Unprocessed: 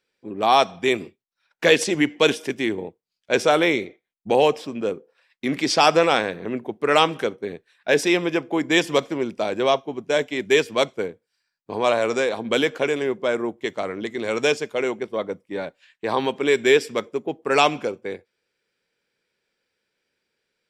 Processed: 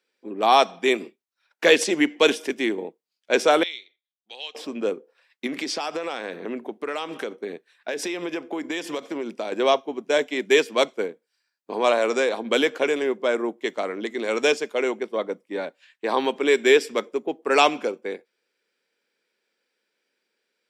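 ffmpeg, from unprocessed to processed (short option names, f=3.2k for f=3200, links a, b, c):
-filter_complex "[0:a]asettb=1/sr,asplit=3[a][b][c];[a]atrim=end=3.634[d];[b]atrim=start=3.63:end=4.55,asetpts=PTS-STARTPTS,afade=t=in:d=0.004:c=qsin,afade=t=out:st=0.916:d=0.004:c=qsin,bandpass=f=3.6k:t=q:w=4.4[e];[c]atrim=start=4.546[f];[d][e]acrossfade=d=0.004:c1=hsin:c2=qsin[g];[g][f]acrossfade=d=0.004:c1=qsin:c2=hsin,asettb=1/sr,asplit=3[h][i][j];[h]atrim=end=5.464[k];[i]atrim=start=5.46:end=9.52,asetpts=PTS-STARTPTS,afade=t=in:d=0.004:c=qsin,afade=t=out:st=4.056:d=0.004:c=qsin,acompressor=threshold=-24dB:ratio=10:attack=3.2:release=140:knee=1:detection=peak[l];[j]atrim=start=9.516[m];[k][l]acrossfade=d=0.004:c1=hsin:c2=qsin[n];[n][m]acrossfade=d=0.004:c1=qsin:c2=hsin,highpass=f=220:w=0.5412,highpass=f=220:w=1.3066"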